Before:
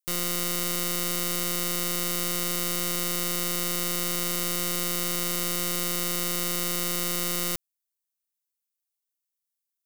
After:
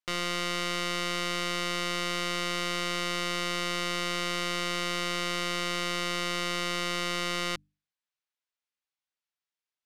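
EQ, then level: LPF 3400 Hz 12 dB/oct; low shelf 470 Hz -10.5 dB; notches 50/100/150/200/250/300 Hz; +5.5 dB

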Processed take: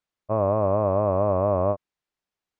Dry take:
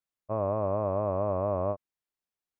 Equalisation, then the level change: air absorption 73 m; +7.0 dB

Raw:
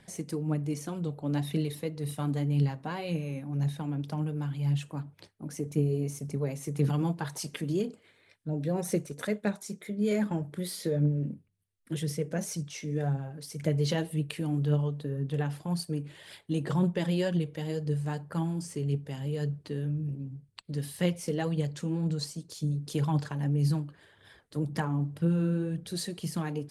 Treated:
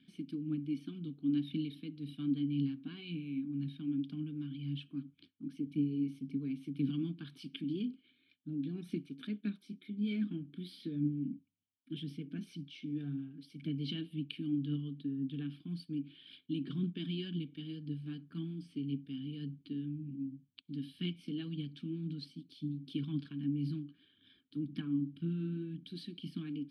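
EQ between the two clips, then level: vowel filter i; fixed phaser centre 2000 Hz, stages 6; +8.5 dB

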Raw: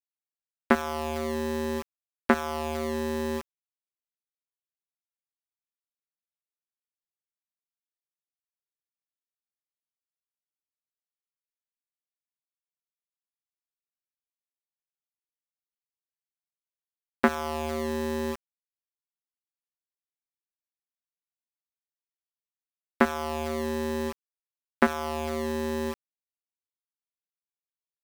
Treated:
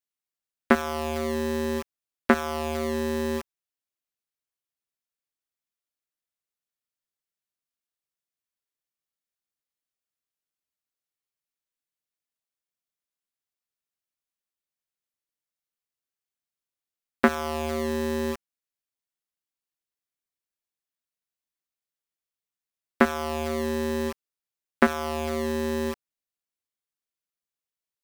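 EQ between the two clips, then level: bell 890 Hz -4 dB 0.33 oct; +2.5 dB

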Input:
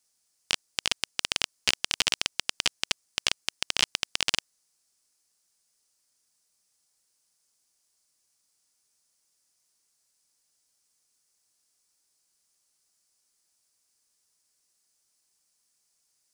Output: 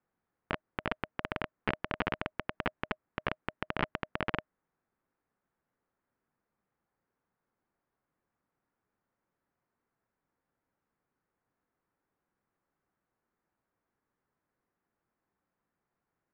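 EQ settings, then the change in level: LPF 1700 Hz 24 dB/oct; bell 190 Hz +5.5 dB 2.4 oct; notch 620 Hz, Q 20; +3.0 dB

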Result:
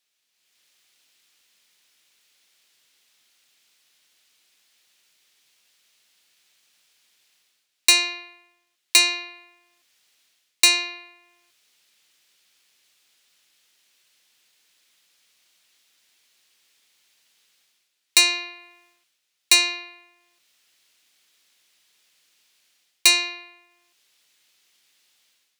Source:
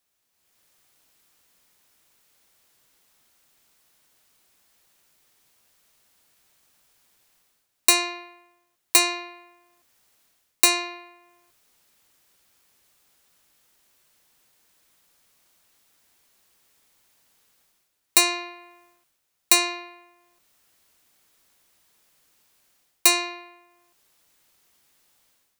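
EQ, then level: weighting filter D; -5.5 dB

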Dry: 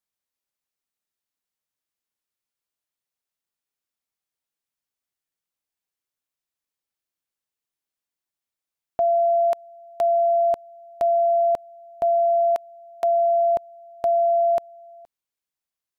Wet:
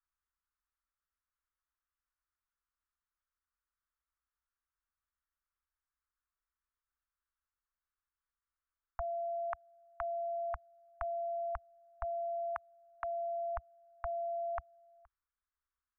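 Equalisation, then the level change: inverse Chebyshev band-stop 190–470 Hz, stop band 70 dB; LPF 1200 Hz 24 dB/oct; +12.5 dB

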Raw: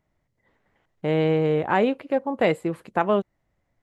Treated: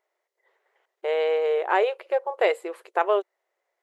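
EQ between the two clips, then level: brick-wall FIR high-pass 350 Hz; 0.0 dB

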